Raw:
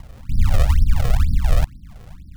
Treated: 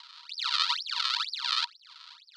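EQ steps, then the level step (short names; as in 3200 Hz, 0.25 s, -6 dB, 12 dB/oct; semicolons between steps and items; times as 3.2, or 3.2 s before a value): rippled Chebyshev high-pass 930 Hz, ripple 9 dB; synth low-pass 4400 Hz, resonance Q 4.6; +5.5 dB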